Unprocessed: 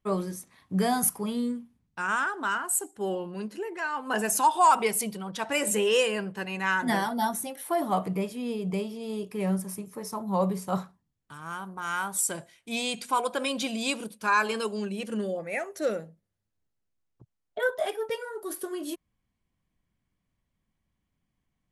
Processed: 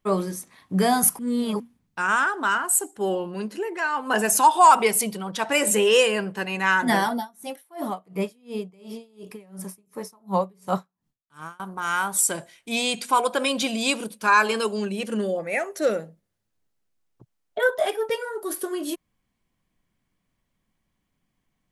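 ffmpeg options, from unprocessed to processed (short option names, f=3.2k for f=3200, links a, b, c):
-filter_complex "[0:a]asettb=1/sr,asplit=3[a][b][c];[a]atrim=end=7.154[d];[b]atrim=start=7.15:end=11.6,asetpts=PTS-STARTPTS,afade=t=in:d=0.004:c=qsin,afade=t=out:st=4.446:d=0.004:c=qsin,aeval=exprs='val(0)*pow(10,-31*(0.5-0.5*cos(2*PI*2.8*n/s))/20)':c=same[e];[c]atrim=start=11.596[f];[d][e]acrossfade=d=0.004:c1=hsin:c2=qsin[g];[g][f]acrossfade=d=0.004:c1=qsin:c2=hsin,asplit=3[h][i][j];[h]atrim=end=1.192[k];[i]atrim=start=1.188:end=1.602,asetpts=PTS-STARTPTS,areverse[l];[j]atrim=start=1.598[m];[k][l]acrossfade=d=0.004:c1=hsin:c2=hsin[n];[n][m]acrossfade=d=0.004:c1=hsin:c2=hsin,equalizer=f=69:t=o:w=2:g=-7.5,volume=6dB"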